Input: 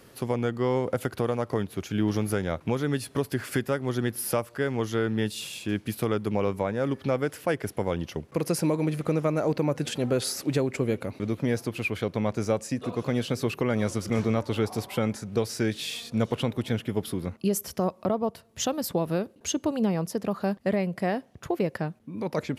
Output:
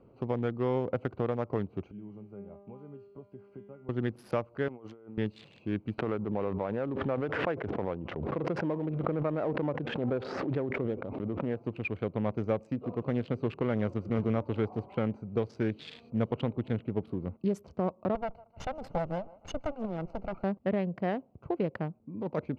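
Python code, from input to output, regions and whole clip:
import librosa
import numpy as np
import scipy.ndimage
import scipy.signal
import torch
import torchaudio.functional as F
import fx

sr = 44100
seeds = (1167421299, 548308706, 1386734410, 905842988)

y = fx.chain(x, sr, fx.comb_fb(f0_hz=200.0, decay_s=0.77, harmonics='all', damping=0.0, mix_pct=90),
    fx.band_squash(depth_pct=40), at=(1.91, 3.89))
y = fx.chain(y, sr, fx.highpass(hz=630.0, slope=6),
    fx.high_shelf(hz=3600.0, db=-3.5),
    fx.over_compress(threshold_db=-43.0, ratio=-1.0), at=(4.68, 5.18))
y = fx.chain(y, sr, fx.lowpass(hz=1500.0, slope=12),
    fx.tilt_eq(slope=2.0),
    fx.pre_swell(db_per_s=25.0), at=(5.98, 11.61))
y = fx.chain(y, sr, fx.lower_of_two(delay_ms=1.4),
    fx.notch(hz=3300.0, q=15.0),
    fx.echo_thinned(ms=154, feedback_pct=55, hz=790.0, wet_db=-14.0), at=(18.15, 20.44))
y = fx.wiener(y, sr, points=25)
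y = scipy.signal.sosfilt(scipy.signal.butter(2, 2900.0, 'lowpass', fs=sr, output='sos'), y)
y = y * librosa.db_to_amplitude(-3.5)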